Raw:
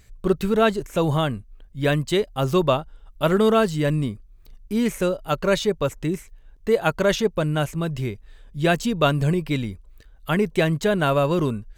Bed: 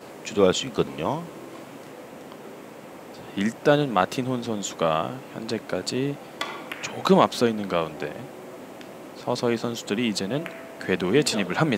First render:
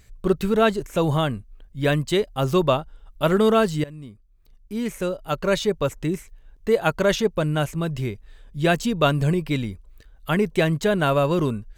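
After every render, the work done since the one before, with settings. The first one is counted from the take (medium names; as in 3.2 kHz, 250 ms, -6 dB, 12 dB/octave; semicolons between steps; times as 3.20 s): 3.84–5.76 s: fade in, from -20.5 dB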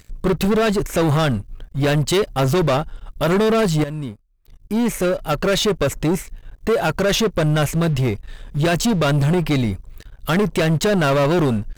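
peak limiter -12.5 dBFS, peak gain reduction 7 dB; waveshaping leveller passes 3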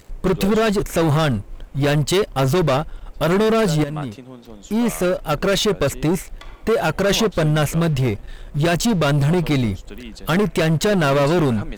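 add bed -12 dB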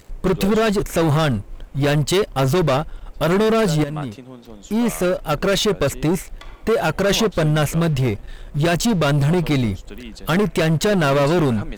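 no audible change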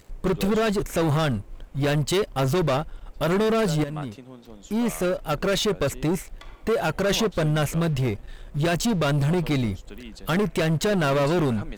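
trim -5 dB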